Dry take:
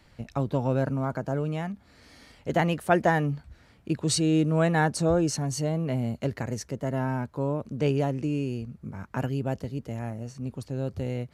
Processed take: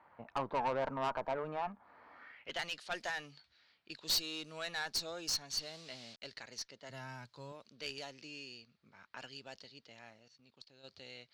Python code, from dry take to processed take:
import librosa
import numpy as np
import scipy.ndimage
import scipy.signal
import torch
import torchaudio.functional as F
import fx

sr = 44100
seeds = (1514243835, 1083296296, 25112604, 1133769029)

y = fx.delta_hold(x, sr, step_db=-43.0, at=(5.5, 6.22))
y = fx.peak_eq(y, sr, hz=120.0, db=13.5, octaves=0.92, at=(6.89, 7.52))
y = fx.env_lowpass(y, sr, base_hz=2300.0, full_db=-19.0)
y = fx.level_steps(y, sr, step_db=19, at=(10.17, 10.83), fade=0.02)
y = fx.filter_sweep_bandpass(y, sr, from_hz=980.0, to_hz=4400.0, start_s=2.11, end_s=2.64, q=2.9)
y = fx.tube_stage(y, sr, drive_db=37.0, bias=0.35)
y = y * 10.0 ** (8.5 / 20.0)